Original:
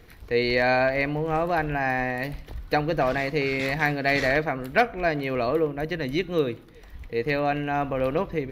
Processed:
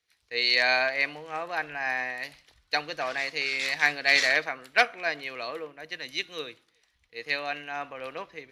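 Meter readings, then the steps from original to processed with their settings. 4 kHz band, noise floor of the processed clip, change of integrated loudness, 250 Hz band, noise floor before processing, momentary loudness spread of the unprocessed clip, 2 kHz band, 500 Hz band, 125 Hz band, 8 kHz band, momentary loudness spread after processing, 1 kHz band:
+6.5 dB, -71 dBFS, -1.5 dB, -17.0 dB, -48 dBFS, 7 LU, +1.0 dB, -10.0 dB, -22.5 dB, n/a, 17 LU, -6.0 dB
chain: weighting filter ITU-R 468; three-band expander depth 70%; gain -5 dB

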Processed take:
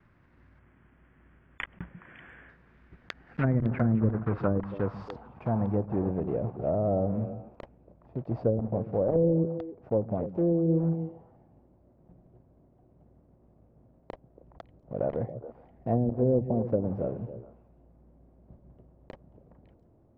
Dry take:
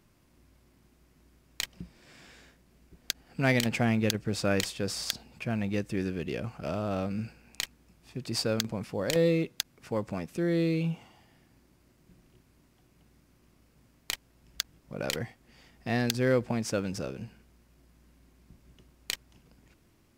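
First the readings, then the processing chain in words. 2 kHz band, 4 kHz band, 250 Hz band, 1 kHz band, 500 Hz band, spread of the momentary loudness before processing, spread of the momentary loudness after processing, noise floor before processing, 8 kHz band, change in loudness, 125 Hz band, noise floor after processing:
-10.0 dB, under -20 dB, +2.0 dB, +1.0 dB, +3.0 dB, 11 LU, 18 LU, -65 dBFS, under -35 dB, +2.0 dB, +4.0 dB, -62 dBFS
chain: block floating point 3-bit; low-pass sweep 1700 Hz -> 640 Hz, 3.51–6.34; gate with hold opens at -57 dBFS; bell 95 Hz +5 dB 1.2 oct; treble ducked by the level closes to 380 Hz, closed at -19.5 dBFS; delay with a stepping band-pass 0.139 s, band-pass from 150 Hz, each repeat 1.4 oct, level -7 dB; spectral delete 0.59–2.49, 3500–7100 Hz

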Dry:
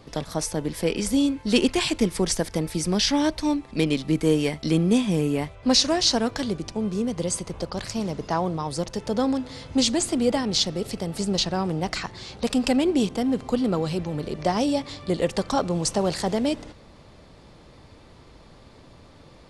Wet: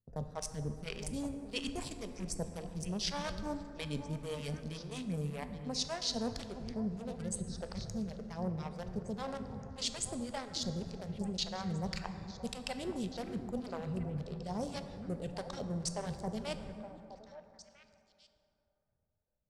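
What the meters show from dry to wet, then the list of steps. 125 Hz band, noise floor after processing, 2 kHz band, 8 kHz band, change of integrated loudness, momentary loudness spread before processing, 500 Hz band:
-10.5 dB, -79 dBFS, -14.5 dB, -13.5 dB, -15.0 dB, 8 LU, -16.0 dB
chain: Wiener smoothing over 41 samples; gate -44 dBFS, range -32 dB; bell 310 Hz -14.5 dB 0.5 oct; reverse; compressor, threshold -32 dBFS, peak gain reduction 15.5 dB; reverse; phaser stages 2, 1.8 Hz, lowest notch 130–3200 Hz; on a send: delay with a stepping band-pass 0.434 s, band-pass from 260 Hz, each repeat 1.4 oct, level -6.5 dB; on the sum: plate-style reverb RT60 2.9 s, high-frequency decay 0.4×, DRR 8 dB; gain -2.5 dB

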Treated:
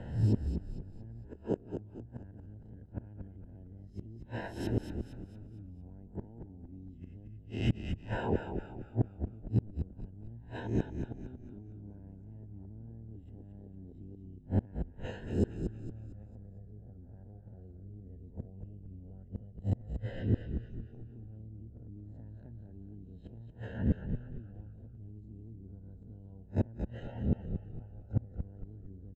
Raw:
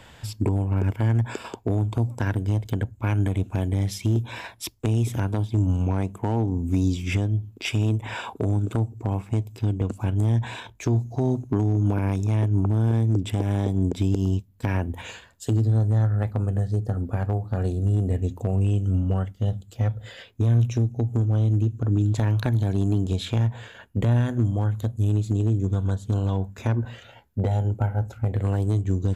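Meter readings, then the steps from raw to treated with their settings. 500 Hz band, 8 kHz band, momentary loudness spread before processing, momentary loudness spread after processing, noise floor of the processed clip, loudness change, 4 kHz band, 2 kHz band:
-11.5 dB, n/a, 6 LU, 17 LU, -53 dBFS, -14.5 dB, -17.0 dB, -14.0 dB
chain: spectral swells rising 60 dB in 0.47 s; bell 210 Hz +4 dB 0.33 oct; in parallel at -2 dB: limiter -22 dBFS, peak gain reduction 11.5 dB; on the sum: running mean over 38 samples; flipped gate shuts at -18 dBFS, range -31 dB; on a send: frequency-shifting echo 0.229 s, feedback 42%, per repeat -39 Hz, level -7 dB; on the sum: gain +1 dB

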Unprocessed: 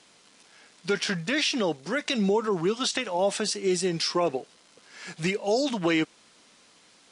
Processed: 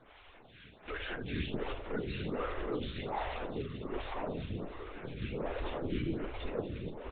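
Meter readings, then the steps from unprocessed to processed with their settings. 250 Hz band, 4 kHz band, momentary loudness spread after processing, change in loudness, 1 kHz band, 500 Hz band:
-11.0 dB, -17.0 dB, 8 LU, -12.5 dB, -9.0 dB, -11.5 dB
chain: regenerating reverse delay 0.605 s, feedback 46%, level -11 dB; comb 2.6 ms, depth 90%; limiter -21 dBFS, peak gain reduction 11 dB; soft clip -35.5 dBFS, distortion -7 dB; loudspeakers at several distances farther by 29 m -10 dB, 82 m -9 dB; FDN reverb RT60 0.38 s, low-frequency decay 0.8×, high-frequency decay 0.8×, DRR 1.5 dB; LPC vocoder at 8 kHz whisper; air absorption 93 m; photocell phaser 1.3 Hz; gain +1 dB

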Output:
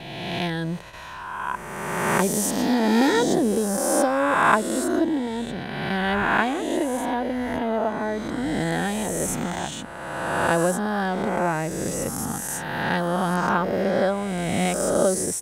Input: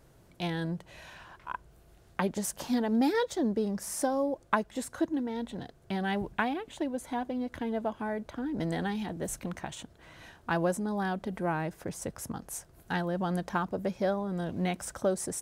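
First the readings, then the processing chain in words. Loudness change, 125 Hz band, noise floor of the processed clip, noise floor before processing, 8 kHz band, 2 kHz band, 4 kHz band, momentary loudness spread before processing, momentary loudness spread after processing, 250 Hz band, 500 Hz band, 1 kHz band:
+9.0 dB, +7.5 dB, -36 dBFS, -59 dBFS, +12.0 dB, +12.0 dB, +11.0 dB, 12 LU, 10 LU, +7.5 dB, +9.5 dB, +10.5 dB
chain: spectral swells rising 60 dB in 1.88 s; gate with hold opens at -36 dBFS; gain +5 dB

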